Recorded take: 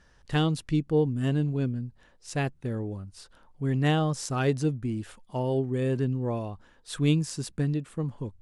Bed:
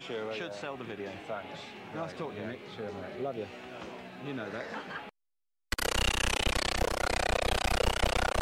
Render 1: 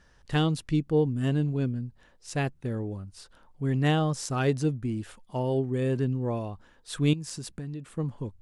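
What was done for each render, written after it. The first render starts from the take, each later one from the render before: 7.13–7.88 compressor, threshold -33 dBFS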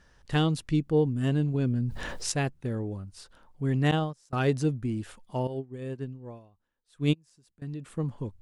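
1.54–2.32 fast leveller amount 70%; 3.91–4.33 gate -25 dBFS, range -26 dB; 5.47–7.62 upward expander 2.5:1, over -36 dBFS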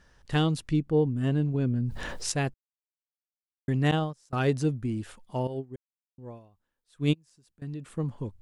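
0.73–1.85 high shelf 3500 Hz -7 dB; 2.54–3.68 mute; 5.76–6.18 mute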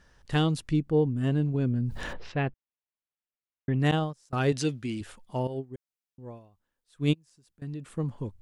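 2.13–3.8 LPF 3100 Hz 24 dB/oct; 4.52–5.01 weighting filter D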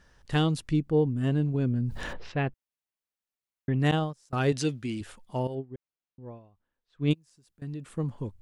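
5.55–7.11 air absorption 200 m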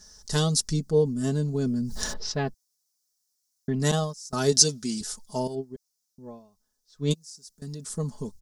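resonant high shelf 3800 Hz +13.5 dB, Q 3; comb 4.7 ms, depth 73%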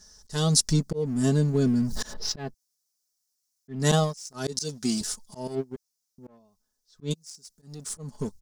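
sample leveller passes 1; auto swell 0.261 s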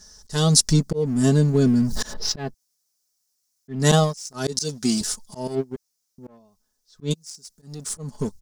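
gain +5 dB

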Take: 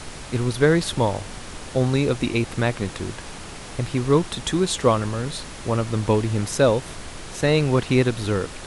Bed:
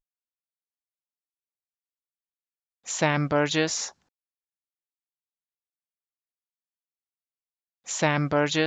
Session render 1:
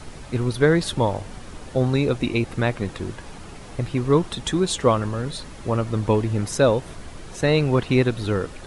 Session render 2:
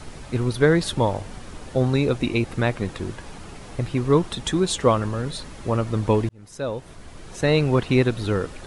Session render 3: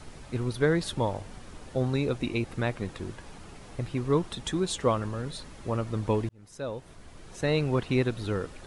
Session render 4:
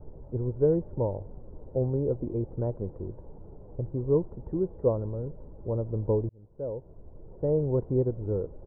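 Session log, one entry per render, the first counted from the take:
denoiser 8 dB, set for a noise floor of -37 dBFS
6.29–7.53 fade in
gain -7 dB
inverse Chebyshev low-pass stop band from 4000 Hz, stop band 80 dB; comb 2.1 ms, depth 39%

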